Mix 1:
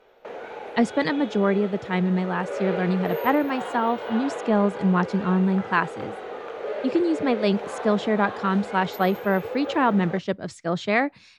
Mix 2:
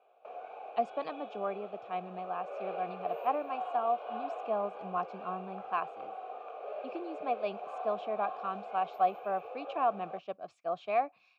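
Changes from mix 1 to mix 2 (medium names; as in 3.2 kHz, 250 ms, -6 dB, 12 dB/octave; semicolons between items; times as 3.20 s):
background: add treble shelf 9.2 kHz +11 dB; master: add vowel filter a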